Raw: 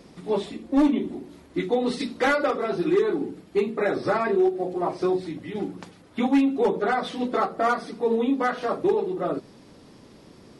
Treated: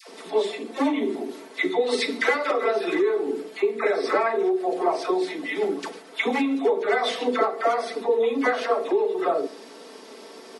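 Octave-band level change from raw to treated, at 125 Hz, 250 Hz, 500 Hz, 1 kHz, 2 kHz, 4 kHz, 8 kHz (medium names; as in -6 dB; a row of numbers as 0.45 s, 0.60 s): under -10 dB, -3.5 dB, +2.0 dB, +1.0 dB, +3.5 dB, +5.5 dB, no reading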